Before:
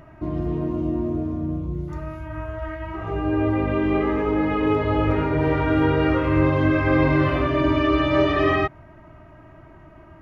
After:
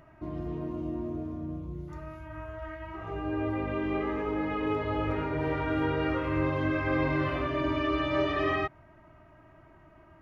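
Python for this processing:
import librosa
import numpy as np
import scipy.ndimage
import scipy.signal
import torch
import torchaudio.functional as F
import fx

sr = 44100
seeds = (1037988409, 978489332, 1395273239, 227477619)

y = fx.low_shelf(x, sr, hz=460.0, db=-4.0)
y = y * librosa.db_to_amplitude(-7.0)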